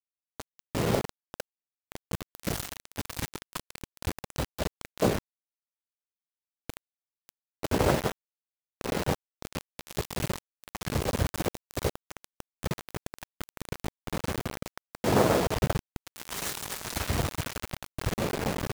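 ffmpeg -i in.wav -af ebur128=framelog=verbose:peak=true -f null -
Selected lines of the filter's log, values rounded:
Integrated loudness:
  I:         -32.0 LUFS
  Threshold: -42.9 LUFS
Loudness range:
  LRA:         7.3 LU
  Threshold: -53.3 LUFS
  LRA low:   -37.0 LUFS
  LRA high:  -29.7 LUFS
True peak:
  Peak:       -9.3 dBFS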